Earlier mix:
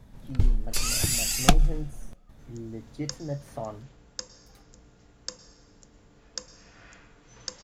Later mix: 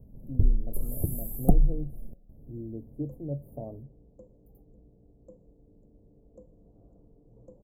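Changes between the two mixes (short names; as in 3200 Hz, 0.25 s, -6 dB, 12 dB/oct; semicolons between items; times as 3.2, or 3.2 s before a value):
second sound: send -6.0 dB; master: add inverse Chebyshev band-stop 1800–5300 Hz, stop band 70 dB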